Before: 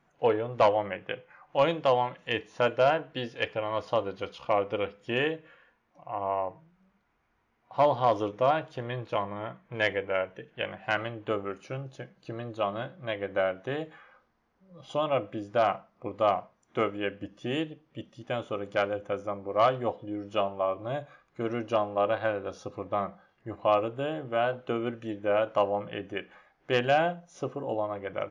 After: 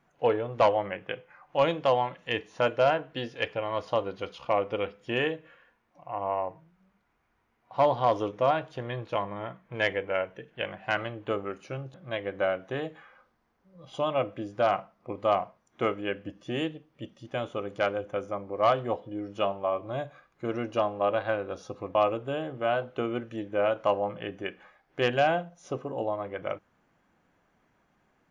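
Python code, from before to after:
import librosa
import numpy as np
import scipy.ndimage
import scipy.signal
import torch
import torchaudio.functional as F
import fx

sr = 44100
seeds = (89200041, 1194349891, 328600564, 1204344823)

y = fx.edit(x, sr, fx.cut(start_s=11.94, length_s=0.96),
    fx.cut(start_s=22.91, length_s=0.75), tone=tone)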